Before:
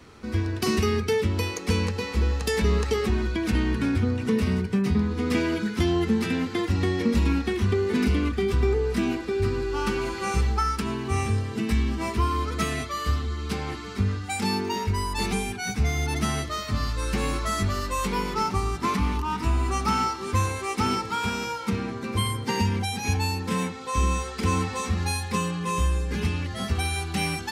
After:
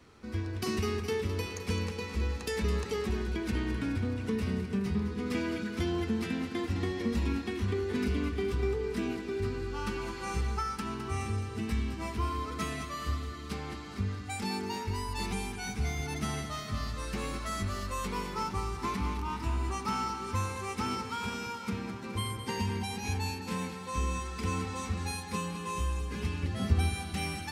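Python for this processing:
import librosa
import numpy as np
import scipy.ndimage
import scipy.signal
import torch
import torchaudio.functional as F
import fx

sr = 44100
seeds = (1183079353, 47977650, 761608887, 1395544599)

y = fx.low_shelf(x, sr, hz=400.0, db=9.5, at=(26.43, 26.9))
y = fx.echo_feedback(y, sr, ms=211, feedback_pct=59, wet_db=-10.0)
y = y * librosa.db_to_amplitude(-8.5)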